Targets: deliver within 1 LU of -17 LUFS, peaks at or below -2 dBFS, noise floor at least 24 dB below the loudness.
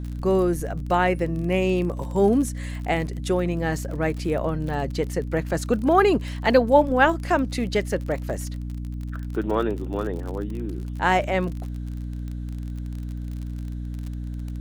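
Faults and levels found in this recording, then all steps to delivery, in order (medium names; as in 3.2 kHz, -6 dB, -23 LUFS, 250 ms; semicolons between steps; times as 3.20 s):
tick rate 39 per s; hum 60 Hz; highest harmonic 300 Hz; hum level -28 dBFS; loudness -24.5 LUFS; peak level -4.5 dBFS; loudness target -17.0 LUFS
-> de-click; de-hum 60 Hz, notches 5; trim +7.5 dB; peak limiter -2 dBFS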